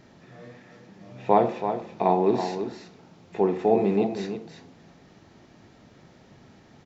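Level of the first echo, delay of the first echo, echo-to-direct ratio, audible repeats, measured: −8.5 dB, 328 ms, −8.5 dB, 1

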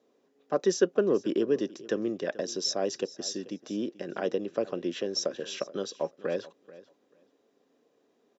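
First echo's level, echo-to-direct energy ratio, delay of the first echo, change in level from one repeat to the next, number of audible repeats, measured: −19.0 dB, −19.0 dB, 435 ms, −15.5 dB, 2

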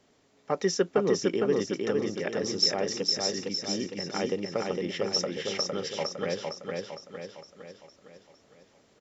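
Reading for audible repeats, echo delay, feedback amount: 6, 458 ms, 50%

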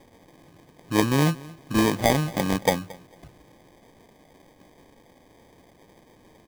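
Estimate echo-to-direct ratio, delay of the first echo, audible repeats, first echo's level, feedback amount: −21.5 dB, 225 ms, 2, −21.5 dB, 22%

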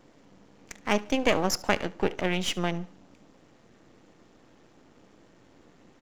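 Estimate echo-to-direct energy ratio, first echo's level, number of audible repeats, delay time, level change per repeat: −21.0 dB, −21.5 dB, 2, 72 ms, −9.5 dB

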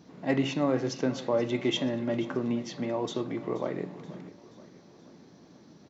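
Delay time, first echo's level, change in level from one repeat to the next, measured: 479 ms, −17.5 dB, −5.5 dB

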